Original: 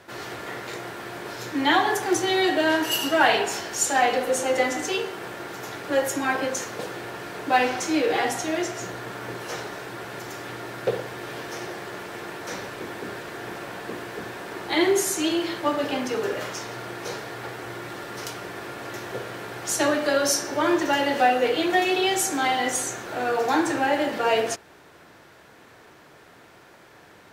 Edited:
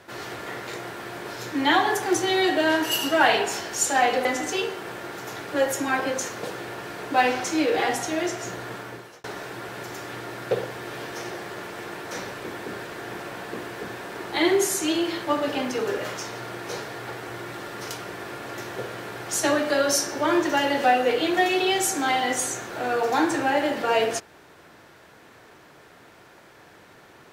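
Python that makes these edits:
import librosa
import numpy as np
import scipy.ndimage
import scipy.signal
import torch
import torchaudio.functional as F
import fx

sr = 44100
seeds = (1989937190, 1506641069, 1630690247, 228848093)

y = fx.edit(x, sr, fx.cut(start_s=4.25, length_s=0.36),
    fx.fade_out_span(start_s=9.09, length_s=0.51), tone=tone)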